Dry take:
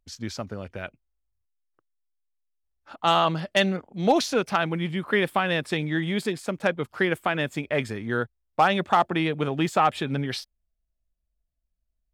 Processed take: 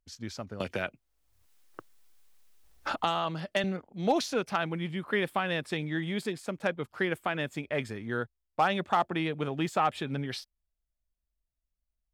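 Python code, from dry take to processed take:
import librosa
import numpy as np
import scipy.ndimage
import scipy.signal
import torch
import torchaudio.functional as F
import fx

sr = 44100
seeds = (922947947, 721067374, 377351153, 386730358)

y = fx.band_squash(x, sr, depth_pct=100, at=(0.6, 3.64))
y = y * 10.0 ** (-6.0 / 20.0)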